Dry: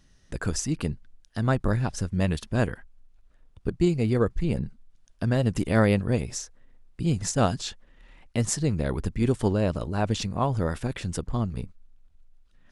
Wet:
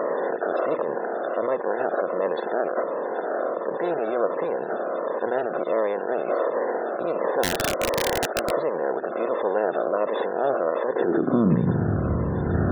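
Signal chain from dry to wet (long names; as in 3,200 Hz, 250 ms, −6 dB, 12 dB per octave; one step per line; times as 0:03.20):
compressor on every frequency bin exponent 0.2
Butterworth low-pass 4,300 Hz 36 dB per octave
low-shelf EQ 240 Hz +3 dB
brickwall limiter −11.5 dBFS, peak gain reduction 12 dB
high-pass filter sweep 560 Hz → 77 Hz, 0:10.86–0:12.02
spectral peaks only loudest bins 64
0:07.43–0:08.51: wrap-around overflow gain 14.5 dB
phaser whose notches keep moving one way falling 1.4 Hz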